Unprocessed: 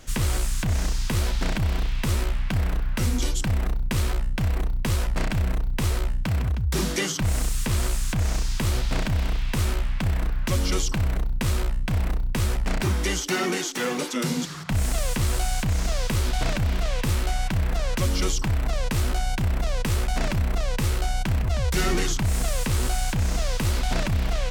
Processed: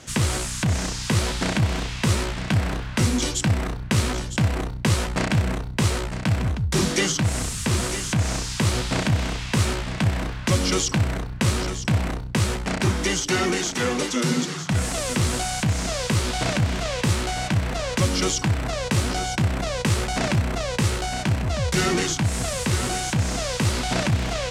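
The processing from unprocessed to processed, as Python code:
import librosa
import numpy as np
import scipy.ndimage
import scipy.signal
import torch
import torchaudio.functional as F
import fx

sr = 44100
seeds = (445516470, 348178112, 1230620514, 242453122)

p1 = scipy.signal.sosfilt(scipy.signal.cheby1(2, 1.0, [110.0, 8600.0], 'bandpass', fs=sr, output='sos'), x)
p2 = fx.rider(p1, sr, range_db=10, speed_s=2.0)
p3 = p2 + fx.echo_single(p2, sr, ms=956, db=-10.5, dry=0)
y = p3 * librosa.db_to_amplitude(5.0)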